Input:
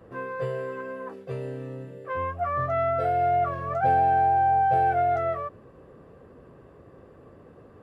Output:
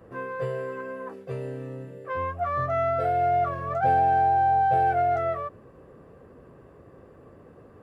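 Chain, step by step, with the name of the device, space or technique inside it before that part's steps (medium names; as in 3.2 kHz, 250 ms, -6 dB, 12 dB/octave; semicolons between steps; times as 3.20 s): exciter from parts (in parallel at -10 dB: high-pass 2 kHz 6 dB/octave + saturation -37 dBFS, distortion -8 dB + high-pass 2.9 kHz 24 dB/octave)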